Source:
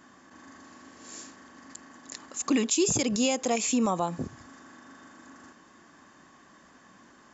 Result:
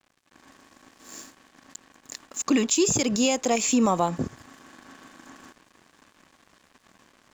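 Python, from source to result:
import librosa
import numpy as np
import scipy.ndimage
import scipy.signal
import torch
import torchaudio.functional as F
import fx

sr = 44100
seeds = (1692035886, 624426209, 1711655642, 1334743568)

y = fx.rider(x, sr, range_db=10, speed_s=2.0)
y = np.sign(y) * np.maximum(np.abs(y) - 10.0 ** (-49.5 / 20.0), 0.0)
y = y * librosa.db_to_amplitude(4.0)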